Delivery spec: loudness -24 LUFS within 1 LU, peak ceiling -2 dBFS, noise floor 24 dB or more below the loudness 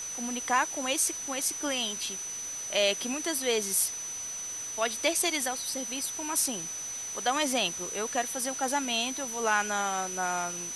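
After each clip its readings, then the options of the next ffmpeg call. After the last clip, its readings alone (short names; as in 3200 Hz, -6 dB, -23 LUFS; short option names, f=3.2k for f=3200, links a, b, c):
steady tone 6000 Hz; tone level -35 dBFS; noise floor -37 dBFS; noise floor target -53 dBFS; loudness -29.0 LUFS; peak -12.0 dBFS; loudness target -24.0 LUFS
-> -af "bandreject=f=6k:w=30"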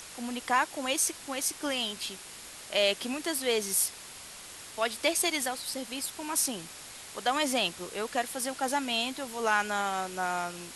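steady tone none; noise floor -46 dBFS; noise floor target -54 dBFS
-> -af "afftdn=nr=8:nf=-46"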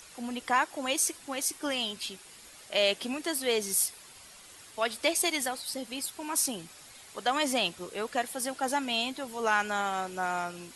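noise floor -52 dBFS; noise floor target -54 dBFS
-> -af "afftdn=nr=6:nf=-52"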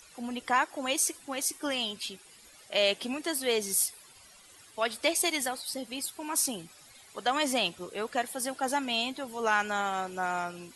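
noise floor -55 dBFS; loudness -30.0 LUFS; peak -12.0 dBFS; loudness target -24.0 LUFS
-> -af "volume=6dB"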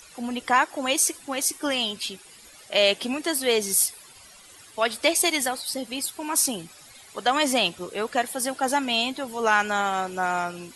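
loudness -24.0 LUFS; peak -6.0 dBFS; noise floor -49 dBFS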